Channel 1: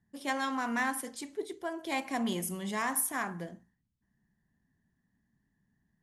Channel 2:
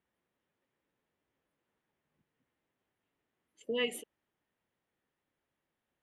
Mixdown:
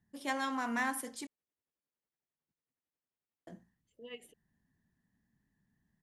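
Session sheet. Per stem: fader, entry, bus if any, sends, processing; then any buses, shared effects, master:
-2.5 dB, 0.00 s, muted 1.27–3.47, no send, dry
-12.5 dB, 0.30 s, no send, tremolo triangle 11 Hz, depth 70%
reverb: off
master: dry

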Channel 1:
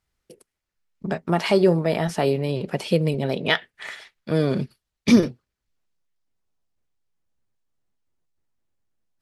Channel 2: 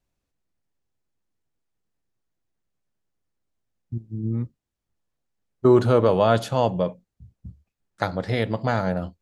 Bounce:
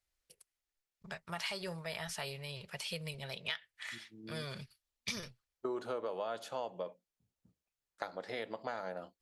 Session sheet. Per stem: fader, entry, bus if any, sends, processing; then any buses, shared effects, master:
-4.5 dB, 0.00 s, no send, passive tone stack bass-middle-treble 10-0-10; notch 750 Hz, Q 12
-10.5 dB, 0.00 s, no send, HPF 410 Hz 12 dB/oct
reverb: off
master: compressor 6:1, threshold -35 dBFS, peak gain reduction 11 dB

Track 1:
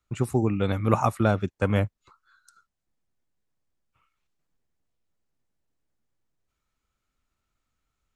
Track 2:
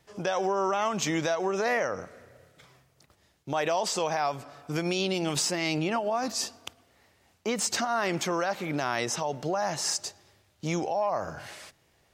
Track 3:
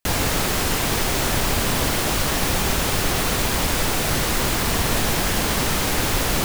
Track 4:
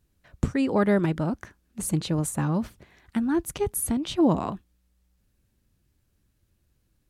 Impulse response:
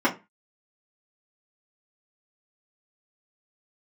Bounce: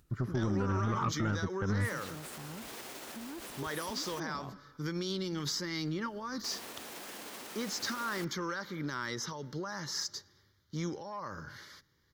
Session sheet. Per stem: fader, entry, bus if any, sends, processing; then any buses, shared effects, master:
-1.5 dB, 0.00 s, bus B, no send, resonant high shelf 2100 Hz -14 dB, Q 1.5
-3.5 dB, 0.10 s, bus B, no send, dry
-18.0 dB, 1.80 s, muted 4.2–6.44, bus A, no send, limiter -15.5 dBFS, peak gain reduction 8 dB; HPF 230 Hz 24 dB/oct
-16.5 dB, 0.00 s, bus A, no send, dry
bus A: 0.0 dB, upward compressor, threshold -53 dBFS; limiter -35 dBFS, peak gain reduction 8.5 dB
bus B: 0.0 dB, fixed phaser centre 2600 Hz, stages 6; limiter -19.5 dBFS, peak gain reduction 10.5 dB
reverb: off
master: soft clip -23.5 dBFS, distortion -17 dB

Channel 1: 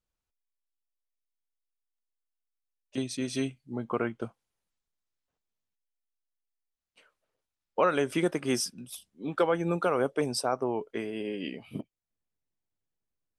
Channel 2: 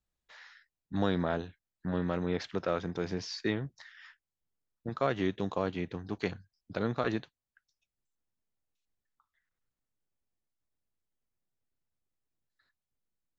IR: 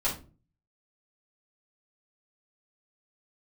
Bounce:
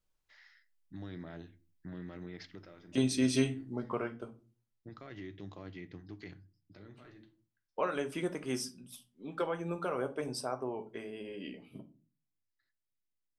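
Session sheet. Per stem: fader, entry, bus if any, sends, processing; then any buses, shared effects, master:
3.42 s 0 dB -> 4.17 s -10 dB -> 11.51 s -10 dB -> 12.14 s -18.5 dB, 0.00 s, send -13 dB, dry
-14.0 dB, 0.00 s, send -19 dB, thirty-one-band EQ 100 Hz +10 dB, 160 Hz +5 dB, 315 Hz +11 dB, 500 Hz -4 dB, 1000 Hz -4 dB, 2000 Hz +10 dB, 3150 Hz +3 dB, 5000 Hz +9 dB; limiter -22.5 dBFS, peak gain reduction 10 dB; auto duck -13 dB, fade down 0.45 s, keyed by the first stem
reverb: on, RT60 0.35 s, pre-delay 3 ms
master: dry

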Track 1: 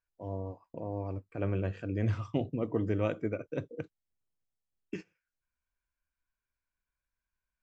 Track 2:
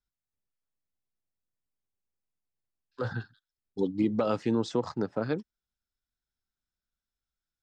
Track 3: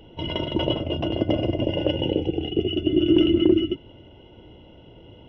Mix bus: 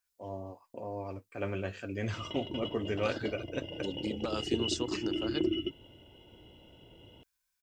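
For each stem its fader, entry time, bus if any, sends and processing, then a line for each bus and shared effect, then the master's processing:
+2.0 dB, 0.00 s, no send, low shelf 200 Hz -11.5 dB; notch comb 160 Hz
-10.5 dB, 0.05 s, no send, high shelf 2900 Hz +11.5 dB
-9.5 dB, 1.95 s, no send, auto duck -9 dB, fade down 0.25 s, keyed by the first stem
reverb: off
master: high shelf 2800 Hz +11 dB

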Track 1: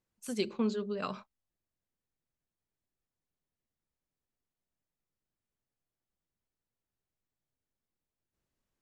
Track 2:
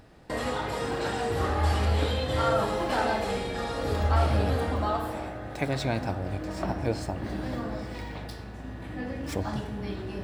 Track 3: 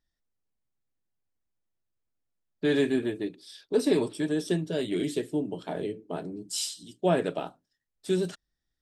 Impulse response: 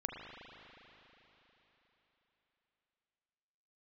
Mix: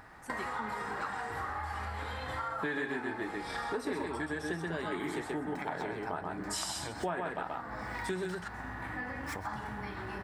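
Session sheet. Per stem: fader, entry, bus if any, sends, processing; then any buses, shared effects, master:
-8.0 dB, 0.00 s, no send, no echo send, spectral gate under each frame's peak -25 dB strong
-5.0 dB, 0.00 s, no send, echo send -15 dB, high shelf 5500 Hz +6.5 dB; compressor, threshold -33 dBFS, peak gain reduction 14 dB
+1.0 dB, 0.00 s, no send, echo send -3.5 dB, dry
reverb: off
echo: echo 0.13 s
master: band shelf 1300 Hz +13.5 dB; compressor 5:1, threshold -34 dBFS, peak gain reduction 18.5 dB

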